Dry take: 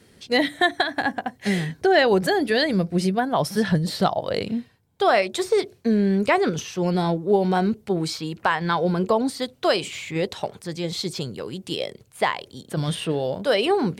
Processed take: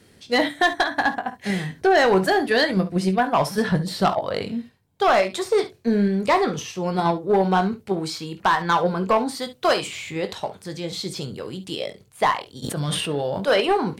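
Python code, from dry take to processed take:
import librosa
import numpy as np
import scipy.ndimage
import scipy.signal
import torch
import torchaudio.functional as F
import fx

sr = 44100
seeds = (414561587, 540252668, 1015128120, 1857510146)

p1 = fx.dynamic_eq(x, sr, hz=1100.0, q=1.2, threshold_db=-36.0, ratio=4.0, max_db=8)
p2 = fx.level_steps(p1, sr, step_db=19)
p3 = p1 + (p2 * 10.0 ** (-1.5 / 20.0))
p4 = np.clip(10.0 ** (6.5 / 20.0) * p3, -1.0, 1.0) / 10.0 ** (6.5 / 20.0)
p5 = fx.high_shelf(p4, sr, hz=7600.0, db=5.5, at=(9.35, 9.87))
p6 = p5 + fx.room_early_taps(p5, sr, ms=(21, 53, 69), db=(-9.5, -16.5, -16.0), dry=0)
p7 = 10.0 ** (-5.0 / 20.0) * np.tanh(p6 / 10.0 ** (-5.0 / 20.0))
p8 = fx.notch(p7, sr, hz=1500.0, q=8.6, at=(6.23, 6.86))
p9 = fx.sustainer(p8, sr, db_per_s=30.0, at=(12.62, 13.6), fade=0.02)
y = p9 * 10.0 ** (-4.0 / 20.0)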